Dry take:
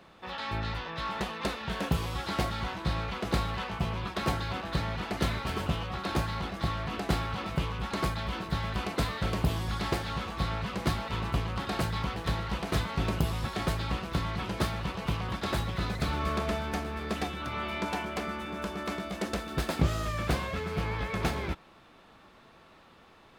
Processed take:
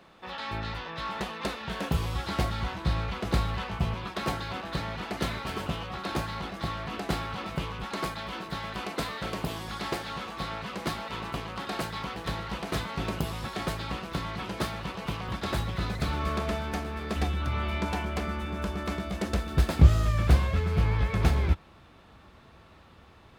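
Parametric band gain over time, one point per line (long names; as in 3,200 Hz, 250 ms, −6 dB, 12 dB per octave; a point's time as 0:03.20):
parametric band 74 Hz 1.6 octaves
−3 dB
from 0:01.94 +5.5 dB
from 0:03.94 −5.5 dB
from 0:07.84 −14 dB
from 0:12.16 −6.5 dB
from 0:15.28 +2 dB
from 0:17.16 +13.5 dB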